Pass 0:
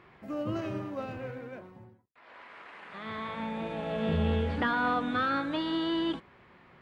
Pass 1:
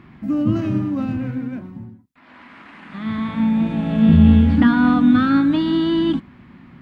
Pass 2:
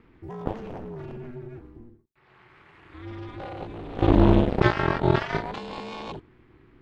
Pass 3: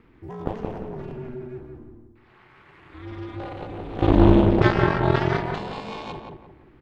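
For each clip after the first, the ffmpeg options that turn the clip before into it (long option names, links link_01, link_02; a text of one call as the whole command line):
ffmpeg -i in.wav -af "lowshelf=frequency=340:width_type=q:width=3:gain=9,volume=6dB" out.wav
ffmpeg -i in.wav -af "aeval=exprs='0.891*(cos(1*acos(clip(val(0)/0.891,-1,1)))-cos(1*PI/2))+0.2*(cos(7*acos(clip(val(0)/0.891,-1,1)))-cos(7*PI/2))':channel_layout=same,aeval=exprs='val(0)*sin(2*PI*120*n/s)':channel_layout=same,volume=-3.5dB" out.wav
ffmpeg -i in.wav -filter_complex "[0:a]asplit=2[link_01][link_02];[link_02]adelay=174,lowpass=frequency=1600:poles=1,volume=-3.5dB,asplit=2[link_03][link_04];[link_04]adelay=174,lowpass=frequency=1600:poles=1,volume=0.37,asplit=2[link_05][link_06];[link_06]adelay=174,lowpass=frequency=1600:poles=1,volume=0.37,asplit=2[link_07][link_08];[link_08]adelay=174,lowpass=frequency=1600:poles=1,volume=0.37,asplit=2[link_09][link_10];[link_10]adelay=174,lowpass=frequency=1600:poles=1,volume=0.37[link_11];[link_01][link_03][link_05][link_07][link_09][link_11]amix=inputs=6:normalize=0,volume=1dB" out.wav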